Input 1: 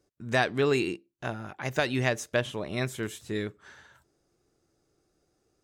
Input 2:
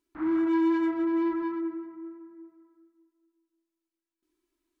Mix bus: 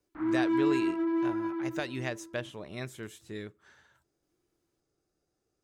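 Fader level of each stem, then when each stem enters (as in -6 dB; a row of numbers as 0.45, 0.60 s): -8.5, -2.5 dB; 0.00, 0.00 s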